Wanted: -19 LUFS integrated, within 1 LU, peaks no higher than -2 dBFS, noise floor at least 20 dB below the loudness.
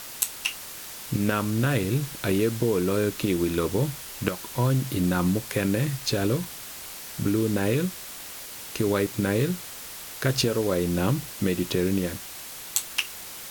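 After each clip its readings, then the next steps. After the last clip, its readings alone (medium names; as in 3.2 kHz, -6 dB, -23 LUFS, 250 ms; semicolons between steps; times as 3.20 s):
noise floor -40 dBFS; noise floor target -47 dBFS; loudness -26.5 LUFS; peak level -6.5 dBFS; loudness target -19.0 LUFS
-> noise reduction 7 dB, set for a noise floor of -40 dBFS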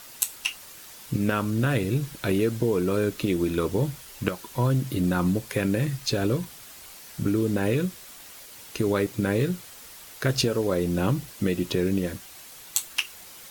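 noise floor -46 dBFS; noise floor target -47 dBFS
-> noise reduction 6 dB, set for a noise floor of -46 dBFS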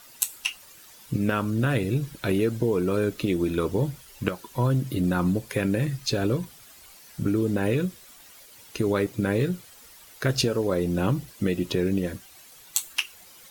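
noise floor -50 dBFS; loudness -26.5 LUFS; peak level -6.5 dBFS; loudness target -19.0 LUFS
-> trim +7.5 dB; peak limiter -2 dBFS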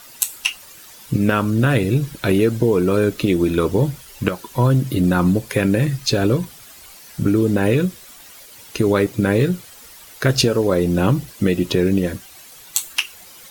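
loudness -19.0 LUFS; peak level -2.0 dBFS; noise floor -43 dBFS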